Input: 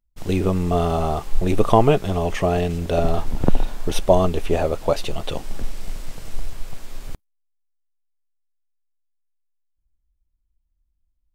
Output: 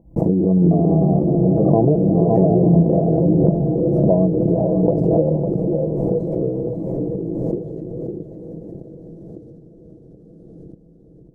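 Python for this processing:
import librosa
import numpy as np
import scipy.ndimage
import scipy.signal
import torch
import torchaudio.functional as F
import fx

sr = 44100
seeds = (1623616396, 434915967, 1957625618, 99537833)

p1 = fx.recorder_agc(x, sr, target_db=-10.5, rise_db_per_s=60.0, max_gain_db=30)
p2 = scipy.signal.sosfilt(scipy.signal.cheby2(4, 40, 1300.0, 'lowpass', fs=sr, output='sos'), p1)
p3 = fx.echo_pitch(p2, sr, ms=313, semitones=-3, count=2, db_per_echo=-3.0)
p4 = scipy.signal.sosfilt(scipy.signal.butter(2, 130.0, 'highpass', fs=sr, output='sos'), p3)
p5 = p4 + 10.0 ** (-7.0 / 20.0) * np.pad(p4, (int(554 * sr / 1000.0), 0))[:len(p4)]
p6 = fx.dynamic_eq(p5, sr, hz=180.0, q=2.2, threshold_db=-35.0, ratio=4.0, max_db=5)
p7 = p6 + 0.54 * np.pad(p6, (int(6.1 * sr / 1000.0), 0))[:len(p6)]
p8 = p7 + fx.echo_diffused(p7, sr, ms=478, feedback_pct=60, wet_db=-13, dry=0)
p9 = fx.pre_swell(p8, sr, db_per_s=22.0)
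y = F.gain(torch.from_numpy(p9), -1.5).numpy()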